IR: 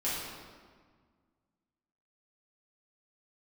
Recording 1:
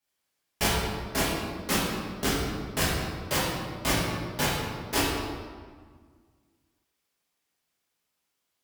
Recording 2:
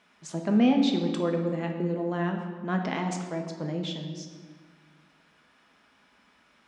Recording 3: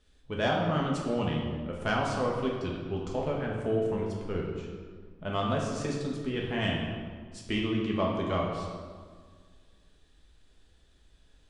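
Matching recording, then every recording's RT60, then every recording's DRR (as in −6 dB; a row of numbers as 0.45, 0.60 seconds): 1; 1.7, 1.7, 1.7 seconds; −9.5, 3.0, −2.5 decibels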